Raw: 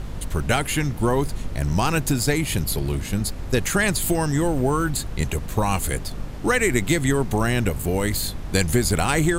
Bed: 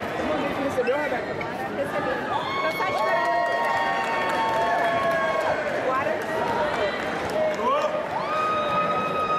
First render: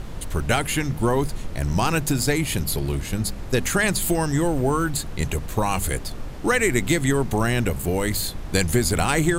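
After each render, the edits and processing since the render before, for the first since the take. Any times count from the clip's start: de-hum 50 Hz, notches 5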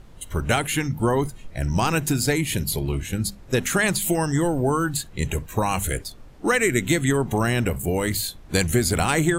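noise print and reduce 13 dB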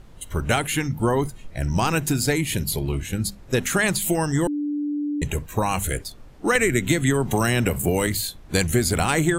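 4.47–5.22 s: bleep 293 Hz -22.5 dBFS; 6.55–8.07 s: three bands compressed up and down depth 100%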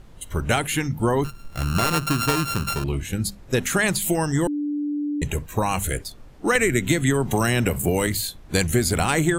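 1.24–2.84 s: sorted samples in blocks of 32 samples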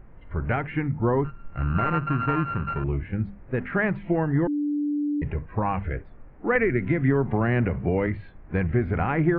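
steep low-pass 2.2 kHz 36 dB/octave; harmonic-percussive split percussive -6 dB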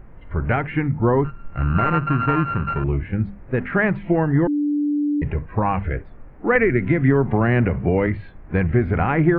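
trim +5 dB

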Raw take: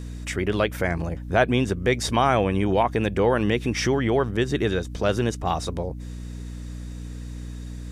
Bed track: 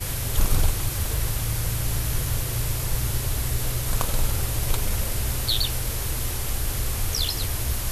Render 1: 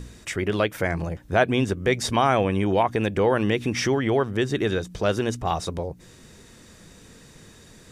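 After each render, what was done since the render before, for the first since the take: de-hum 60 Hz, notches 5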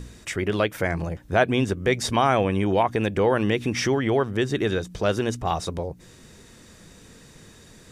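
no audible change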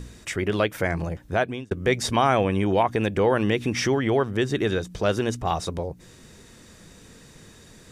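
1.23–1.71 s: fade out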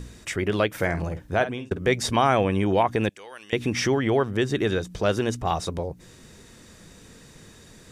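0.70–1.87 s: doubling 50 ms -11.5 dB; 3.09–3.53 s: band-pass filter 7.5 kHz, Q 0.99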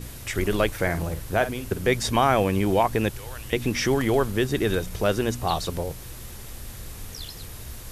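add bed track -12.5 dB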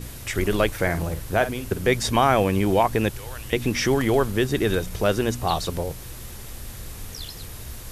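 trim +1.5 dB

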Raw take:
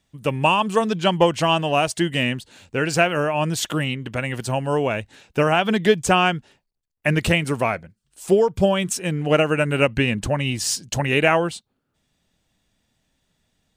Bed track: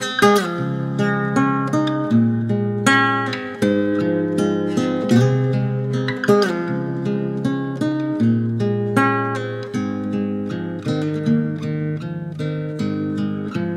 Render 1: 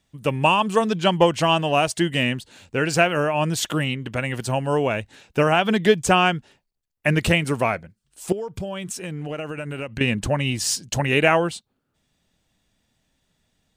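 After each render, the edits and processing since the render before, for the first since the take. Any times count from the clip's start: 8.32–10.01 s: compression, threshold -27 dBFS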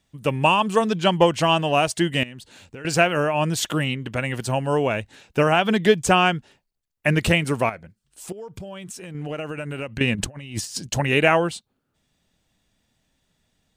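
2.23–2.85 s: compression 12:1, threshold -34 dBFS; 7.69–9.15 s: compression 2:1, threshold -37 dBFS; 10.15–10.87 s: compressor with a negative ratio -30 dBFS, ratio -0.5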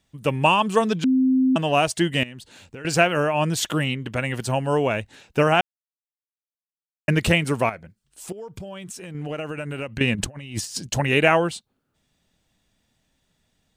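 1.04–1.56 s: bleep 260 Hz -15 dBFS; 5.61–7.08 s: mute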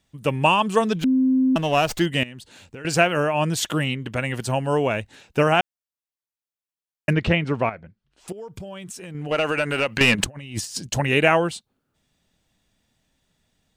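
0.95–2.06 s: sliding maximum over 3 samples; 7.13–8.28 s: distance through air 210 m; 9.31–10.24 s: overdrive pedal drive 19 dB, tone 6.5 kHz, clips at -7 dBFS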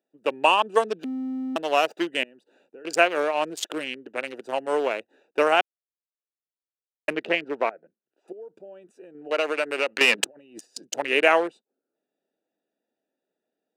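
local Wiener filter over 41 samples; high-pass 350 Hz 24 dB/octave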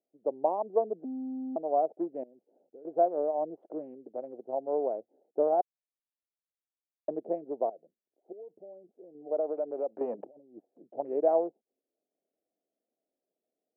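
Chebyshev low-pass 720 Hz, order 4; bass shelf 470 Hz -8.5 dB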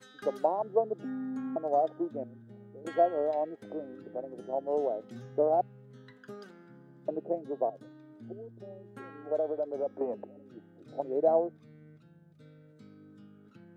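add bed track -31.5 dB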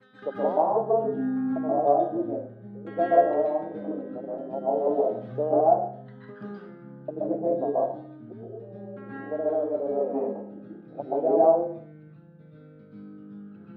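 distance through air 410 m; plate-style reverb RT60 0.51 s, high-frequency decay 0.9×, pre-delay 115 ms, DRR -7.5 dB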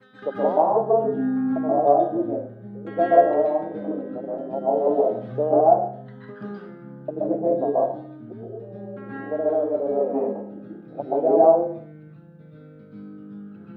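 trim +4 dB

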